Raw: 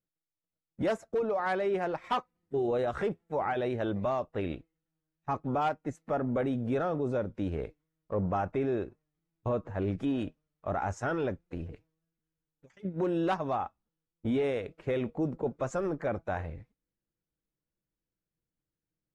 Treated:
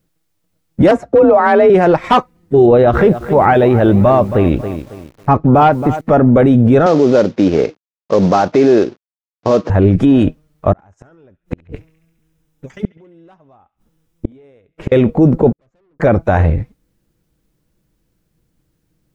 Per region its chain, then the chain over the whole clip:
0.91–1.70 s: low-pass 2 kHz 6 dB/octave + frequency shift +38 Hz
2.66–6.01 s: distance through air 140 m + bit-crushed delay 273 ms, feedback 35%, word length 9-bit, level -14 dB
6.86–9.70 s: CVSD coder 32 kbps + high-pass 250 Hz
10.72–14.92 s: inverted gate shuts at -30 dBFS, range -40 dB + band-stop 4.4 kHz + band-passed feedback delay 69 ms, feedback 71%, band-pass 2.5 kHz, level -18.5 dB
15.52–16.00 s: low-pass 3.2 kHz + valve stage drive 39 dB, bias 0.35 + inverted gate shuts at -44 dBFS, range -42 dB
whole clip: bass shelf 450 Hz +7.5 dB; loudness maximiser +21.5 dB; trim -1 dB

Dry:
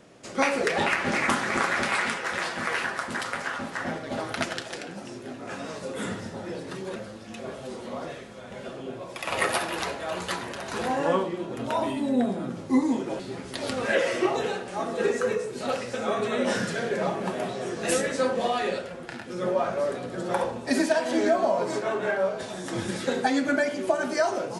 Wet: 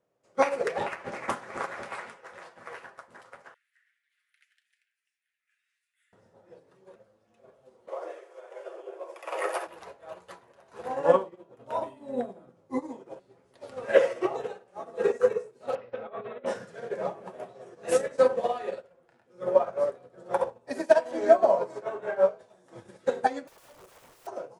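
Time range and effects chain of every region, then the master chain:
3.54–6.13 s: steep high-pass 1.8 kHz 48 dB/octave + peaking EQ 5.7 kHz -11.5 dB 1.4 oct
7.88–9.67 s: Chebyshev high-pass 310 Hz, order 8 + peaking EQ 3.9 kHz -6 dB 0.35 oct + level flattener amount 50%
15.75–16.46 s: inverse Chebyshev low-pass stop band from 10 kHz, stop band 60 dB + compressor with a negative ratio -28 dBFS, ratio -0.5
23.47–24.27 s: treble shelf 2.6 kHz +5 dB + integer overflow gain 26.5 dB
whole clip: ten-band graphic EQ 125 Hz +4 dB, 250 Hz -4 dB, 500 Hz +9 dB, 1 kHz +5 dB, 4 kHz -3 dB; upward expansion 2.5:1, over -31 dBFS

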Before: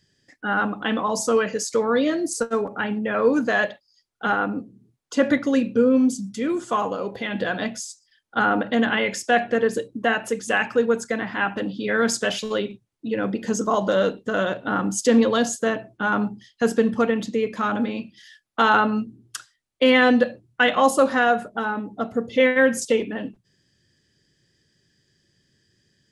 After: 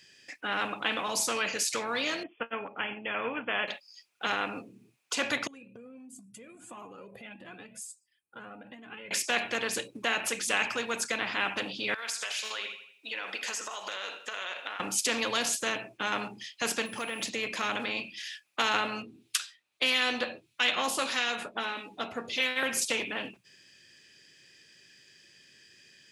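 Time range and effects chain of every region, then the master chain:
2.23–3.68 s: brick-wall FIR low-pass 3.5 kHz + upward expansion, over -39 dBFS
5.47–9.11 s: FFT filter 210 Hz 0 dB, 630 Hz -13 dB, 5.7 kHz -23 dB, 8.6 kHz -6 dB + compression 4:1, threshold -38 dBFS + Shepard-style flanger rising 1.5 Hz
11.94–14.80 s: high-pass 1 kHz + compression 10:1, threshold -35 dBFS + feedback delay 82 ms, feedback 43%, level -15 dB
16.85–17.28 s: short-mantissa float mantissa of 6-bit + compression 3:1, threshold -28 dBFS + whistle 10 kHz -54 dBFS
19.02–22.63 s: peaking EQ 3.7 kHz +8 dB 0.62 oct + harmonic tremolo 1.6 Hz, crossover 1.7 kHz + doubling 12 ms -8 dB
whole clip: high-pass 780 Hz 6 dB/octave; peaking EQ 2.5 kHz +14.5 dB 0.3 oct; spectrum-flattening compressor 2:1; trim -4.5 dB

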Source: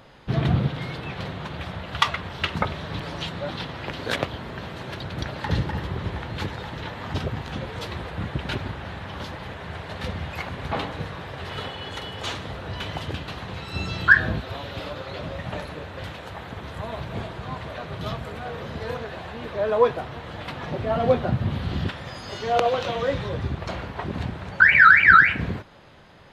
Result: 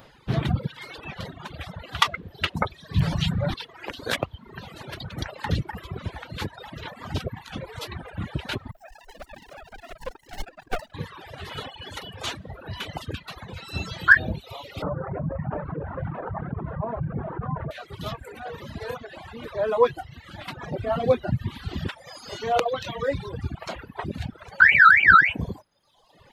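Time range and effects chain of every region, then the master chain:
2.96–3.54 s: resonant low shelf 220 Hz +12 dB, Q 1.5 + level flattener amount 70%
8.71–10.94 s: formants replaced by sine waves + bucket-brigade echo 210 ms, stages 2048, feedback 63%, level -14 dB + sliding maximum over 33 samples
14.82–17.71 s: low-pass 1.4 kHz 24 dB/octave + peaking EQ 150 Hz +11.5 dB 0.44 oct + level flattener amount 70%
whole clip: reverb removal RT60 1.2 s; treble shelf 9.5 kHz +10.5 dB; reverb removal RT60 1.1 s

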